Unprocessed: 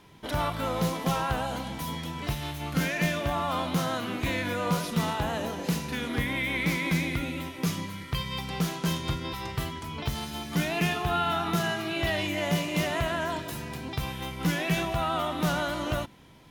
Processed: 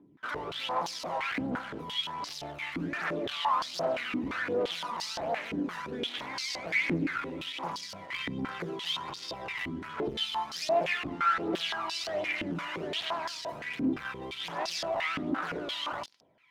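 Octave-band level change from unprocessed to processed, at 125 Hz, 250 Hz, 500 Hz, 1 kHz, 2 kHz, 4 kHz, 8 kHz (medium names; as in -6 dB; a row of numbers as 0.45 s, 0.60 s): -14.5 dB, -5.5 dB, -2.0 dB, -2.0 dB, -2.5 dB, 0.0 dB, -6.0 dB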